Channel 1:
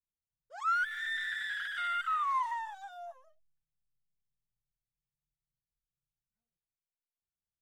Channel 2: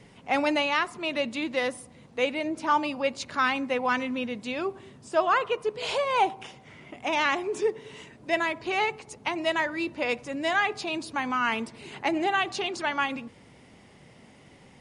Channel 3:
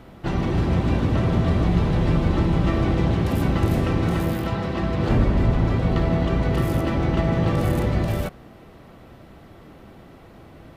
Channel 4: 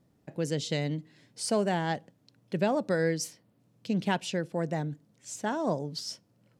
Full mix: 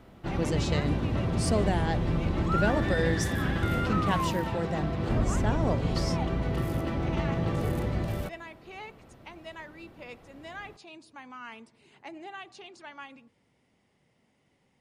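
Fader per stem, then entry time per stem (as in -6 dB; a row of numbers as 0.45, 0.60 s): -1.5, -17.0, -8.0, -1.0 dB; 1.85, 0.00, 0.00, 0.00 s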